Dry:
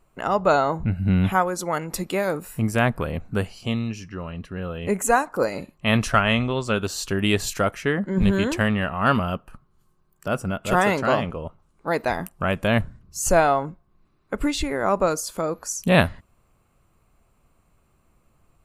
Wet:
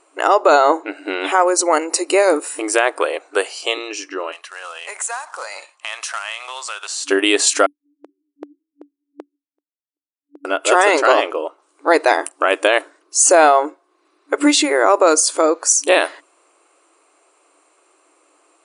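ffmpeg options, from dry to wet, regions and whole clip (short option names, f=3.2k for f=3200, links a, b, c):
-filter_complex "[0:a]asettb=1/sr,asplit=3[a][b][c];[a]atrim=end=1.384[d];[b]atrim=start=1.38:end=2.33,asetpts=PTS-STARTPTS,afade=t=in:d=0.004:c=qsin,afade=t=out:st=0.946:d=0.004:c=qsin,asuperstop=centerf=3400:order=4:qfactor=5.6,equalizer=f=1.6k:t=o:w=0.8:g=-4[e];[c]atrim=start=2.326[f];[d][e]acrossfade=d=0.004:c1=hsin:c2=qsin[g];[g][f]acrossfade=d=0.004:c1=qsin:c2=hsin,asettb=1/sr,asplit=3[h][i][j];[h]atrim=end=2.924[k];[i]atrim=start=2.92:end=3.78,asetpts=PTS-STARTPTS,afade=t=in:d=0.004:c=qsin,afade=t=out:st=0.856:d=0.004:c=qsin,highpass=f=380:w=0.5412,highpass=f=380:w=1.3066,highshelf=f=11k:g=6[l];[j]atrim=start=3.776[m];[k][l]acrossfade=d=0.004:c1=hsin:c2=qsin[n];[n][m]acrossfade=d=0.004:c1=qsin:c2=hsin,asettb=1/sr,asplit=3[o][p][q];[o]atrim=end=4.324[r];[p]atrim=start=4.32:end=7.09,asetpts=PTS-STARTPTS,afade=t=in:d=0.004:c=qsin,afade=t=out:st=2.766:d=0.004:c=qsin,highpass=f=780:w=0.5412,highpass=f=780:w=1.3066,acompressor=threshold=-40dB:ratio=3:attack=3.2:release=140:knee=1:detection=peak,acrusher=bits=3:mode=log:mix=0:aa=0.000001[s];[q]atrim=start=7.086[t];[r][s]acrossfade=d=0.004:c1=hsin:c2=qsin[u];[u][t]acrossfade=d=0.004:c1=qsin:c2=hsin,asettb=1/sr,asplit=3[v][w][x];[v]atrim=end=7.664[y];[w]atrim=start=7.66:end=10.45,asetpts=PTS-STARTPTS,afade=t=in:d=0.004:c=qsin,afade=t=out:st=2.786:d=0.004:c=qsin,asuperpass=centerf=200:order=12:qfactor=1.8,aeval=exprs='val(0)*pow(10,-38*if(lt(mod(2.6*n/s,1),2*abs(2.6)/1000),1-mod(2.6*n/s,1)/(2*abs(2.6)/1000),(mod(2.6*n/s,1)-2*abs(2.6)/1000)/(1-2*abs(2.6)/1000))/20)':c=same[z];[x]atrim=start=10.446[aa];[y][z]acrossfade=d=0.004:c1=hsin:c2=qsin[ab];[ab][aa]acrossfade=d=0.004:c1=qsin:c2=hsin,afftfilt=real='re*between(b*sr/4096,280,10000)':imag='im*between(b*sr/4096,280,10000)':win_size=4096:overlap=0.75,highshelf=f=7.6k:g=10,alimiter=level_in=12dB:limit=-1dB:release=50:level=0:latency=1,volume=-1dB"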